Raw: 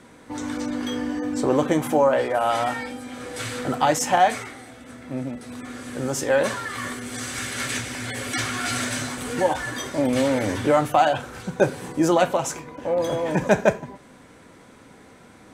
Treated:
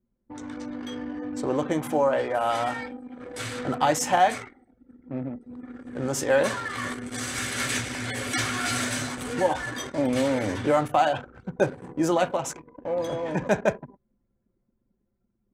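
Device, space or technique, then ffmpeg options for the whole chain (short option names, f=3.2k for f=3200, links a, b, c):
voice memo with heavy noise removal: -af "anlmdn=10,dynaudnorm=f=770:g=5:m=11.5dB,volume=-7.5dB"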